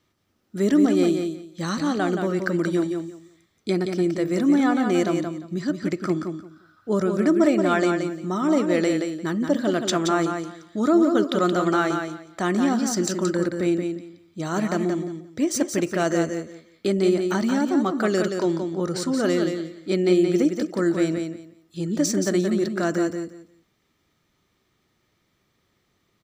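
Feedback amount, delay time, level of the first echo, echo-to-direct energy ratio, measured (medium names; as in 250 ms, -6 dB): 20%, 175 ms, -6.0 dB, -6.0 dB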